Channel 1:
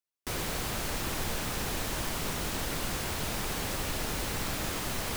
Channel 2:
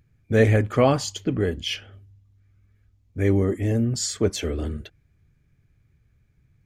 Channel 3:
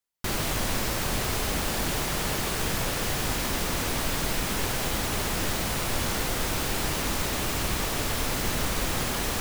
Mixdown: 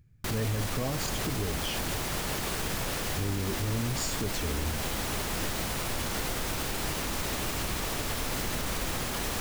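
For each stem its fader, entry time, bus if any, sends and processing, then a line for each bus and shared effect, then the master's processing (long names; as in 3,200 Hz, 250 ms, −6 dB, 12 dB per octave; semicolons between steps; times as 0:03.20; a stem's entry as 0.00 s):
muted
−5.0 dB, 0.00 s, no send, bass and treble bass +7 dB, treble +3 dB; downward compressor 2 to 1, threshold −24 dBFS, peak gain reduction 8.5 dB
−3.0 dB, 0.00 s, no send, no processing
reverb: not used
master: brickwall limiter −21.5 dBFS, peak gain reduction 7.5 dB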